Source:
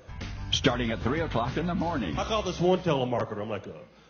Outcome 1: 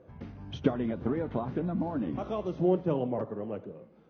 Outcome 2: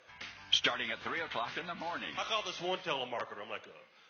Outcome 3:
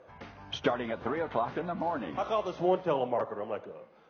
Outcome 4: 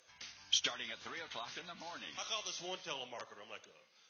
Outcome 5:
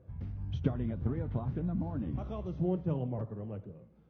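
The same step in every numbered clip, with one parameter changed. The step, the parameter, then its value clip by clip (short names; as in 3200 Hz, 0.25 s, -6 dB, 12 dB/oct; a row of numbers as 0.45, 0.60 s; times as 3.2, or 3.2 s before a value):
band-pass, frequency: 280, 2500, 730, 6900, 100 Hz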